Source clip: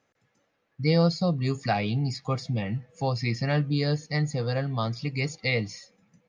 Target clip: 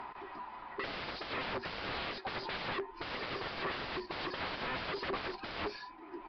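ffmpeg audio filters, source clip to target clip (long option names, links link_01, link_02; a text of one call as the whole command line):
ffmpeg -i in.wav -filter_complex "[0:a]afftfilt=real='real(if(between(b,1,1008),(2*floor((b-1)/24)+1)*24-b,b),0)':imag='imag(if(between(b,1,1008),(2*floor((b-1)/24)+1)*24-b,b),0)*if(between(b,1,1008),-1,1)':win_size=2048:overlap=0.75,equalizer=frequency=950:width=1.9:gain=11,acompressor=mode=upward:threshold=-39dB:ratio=2.5,alimiter=limit=-15.5dB:level=0:latency=1:release=11,acontrast=20,aeval=exprs='(mod(25.1*val(0)+1,2)-1)/25.1':channel_layout=same,asplit=2[link_01][link_02];[link_02]highpass=frequency=720:poles=1,volume=12dB,asoftclip=type=tanh:threshold=-27.5dB[link_03];[link_01][link_03]amix=inputs=2:normalize=0,lowpass=frequency=1100:poles=1,volume=-6dB,aresample=11025,aresample=44100" -ar 32000 -c:a libvorbis -b:a 48k out.ogg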